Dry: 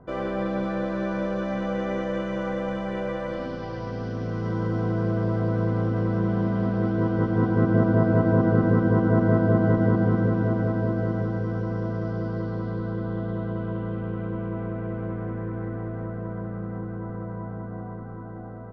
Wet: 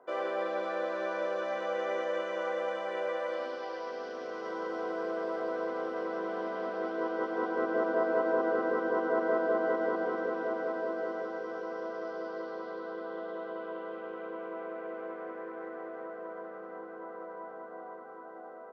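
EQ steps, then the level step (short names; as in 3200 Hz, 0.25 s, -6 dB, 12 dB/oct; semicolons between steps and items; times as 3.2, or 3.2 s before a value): HPF 410 Hz 24 dB/oct; -2.0 dB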